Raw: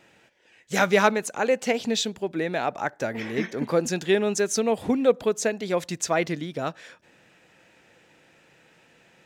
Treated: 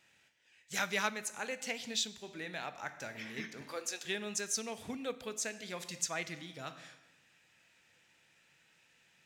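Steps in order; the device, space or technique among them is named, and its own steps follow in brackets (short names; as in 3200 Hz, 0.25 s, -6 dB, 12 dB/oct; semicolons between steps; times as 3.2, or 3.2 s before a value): 3.61–4.05 HPF 350 Hz 24 dB/oct; passive tone stack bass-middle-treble 5-5-5; compressed reverb return (on a send at -6 dB: reverb RT60 0.90 s, pre-delay 14 ms + compressor, threshold -42 dBFS, peak gain reduction 10.5 dB)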